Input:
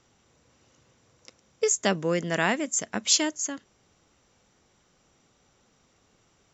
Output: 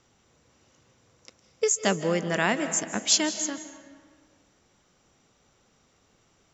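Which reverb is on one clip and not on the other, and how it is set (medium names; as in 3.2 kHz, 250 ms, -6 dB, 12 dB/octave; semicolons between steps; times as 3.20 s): algorithmic reverb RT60 1.7 s, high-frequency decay 0.65×, pre-delay 120 ms, DRR 10.5 dB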